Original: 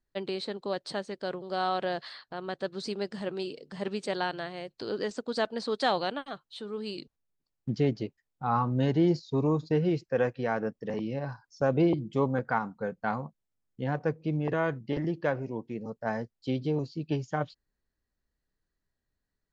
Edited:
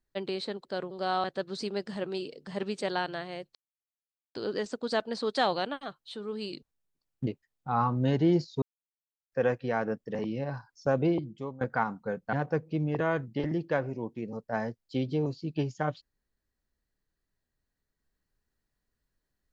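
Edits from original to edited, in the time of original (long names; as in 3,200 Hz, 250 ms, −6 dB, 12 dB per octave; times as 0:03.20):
0:00.65–0:01.16: remove
0:01.75–0:02.49: remove
0:04.80: splice in silence 0.80 s
0:07.72–0:08.02: remove
0:09.37–0:10.07: silence
0:11.64–0:12.36: fade out, to −20 dB
0:13.08–0:13.86: remove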